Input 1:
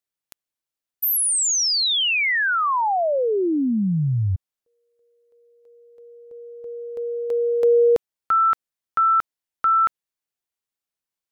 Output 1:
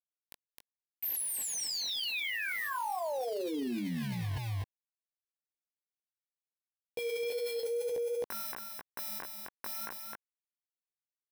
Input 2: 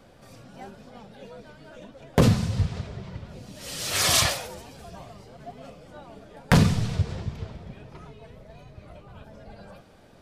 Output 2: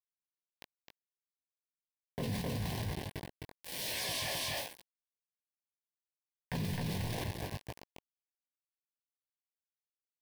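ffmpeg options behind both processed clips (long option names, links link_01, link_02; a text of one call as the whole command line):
ffmpeg -i in.wav -af "acrusher=bits=4:mix=0:aa=0.000001,lowshelf=frequency=120:gain=-6,flanger=delay=16:depth=5.2:speed=2,asuperstop=centerf=1300:order=4:qfactor=2.6,equalizer=frequency=7000:width=2.1:gain=-8,aecho=1:1:261:0.562,areverse,acompressor=threshold=-31dB:ratio=12:attack=0.77:release=57:knee=1:detection=rms,areverse" out.wav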